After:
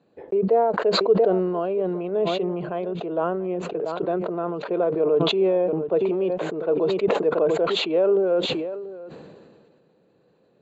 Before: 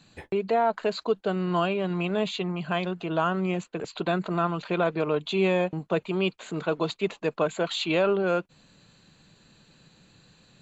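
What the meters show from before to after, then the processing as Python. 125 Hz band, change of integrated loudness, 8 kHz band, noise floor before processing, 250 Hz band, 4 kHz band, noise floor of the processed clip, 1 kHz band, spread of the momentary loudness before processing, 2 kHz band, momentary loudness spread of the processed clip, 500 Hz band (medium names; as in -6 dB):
-2.0 dB, +4.5 dB, no reading, -60 dBFS, +2.5 dB, +4.5 dB, -62 dBFS, +0.5 dB, 6 LU, -3.0 dB, 9 LU, +6.5 dB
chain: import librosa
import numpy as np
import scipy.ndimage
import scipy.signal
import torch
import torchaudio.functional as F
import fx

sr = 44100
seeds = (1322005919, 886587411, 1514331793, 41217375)

y = fx.bandpass_q(x, sr, hz=460.0, q=2.6)
y = y + 10.0 ** (-18.0 / 20.0) * np.pad(y, (int(685 * sr / 1000.0), 0))[:len(y)]
y = fx.sustainer(y, sr, db_per_s=30.0)
y = y * librosa.db_to_amplitude(7.0)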